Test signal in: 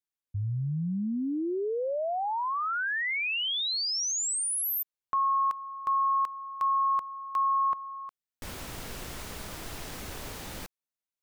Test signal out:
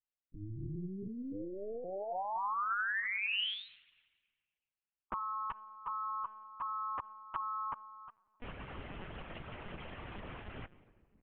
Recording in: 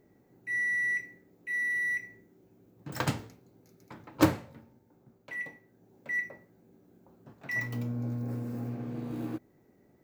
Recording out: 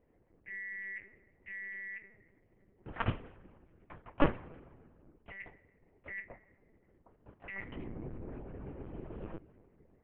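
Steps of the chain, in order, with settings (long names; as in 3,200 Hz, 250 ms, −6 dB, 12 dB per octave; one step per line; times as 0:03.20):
elliptic low-pass filter 3,000 Hz, stop band 50 dB
rectangular room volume 3,400 cubic metres, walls mixed, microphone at 0.41 metres
amplitude modulation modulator 200 Hz, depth 85%
harmonic and percussive parts rebalanced harmonic −11 dB
linear-prediction vocoder at 8 kHz pitch kept
level +3 dB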